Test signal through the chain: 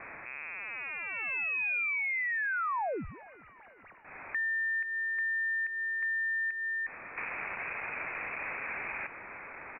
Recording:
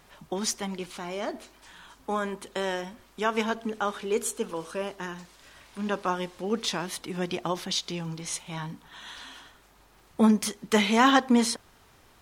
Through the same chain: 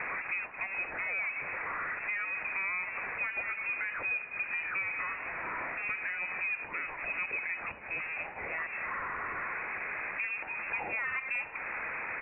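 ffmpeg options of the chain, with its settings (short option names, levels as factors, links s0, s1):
-af "aeval=exprs='val(0)+0.5*0.0376*sgn(val(0))':c=same,highpass=f=370:w=0.5412,highpass=f=370:w=1.3066,equalizer=f=510:w=0.34:g=3.5,acontrast=81,alimiter=limit=0.299:level=0:latency=1:release=253,acompressor=threshold=0.0562:ratio=5,acrusher=bits=9:mix=0:aa=0.000001,asoftclip=type=tanh:threshold=0.1,aecho=1:1:402|804|1206|1608:0.075|0.0435|0.0252|0.0146,lowpass=f=2500:t=q:w=0.5098,lowpass=f=2500:t=q:w=0.6013,lowpass=f=2500:t=q:w=0.9,lowpass=f=2500:t=q:w=2.563,afreqshift=-2900,volume=0.531"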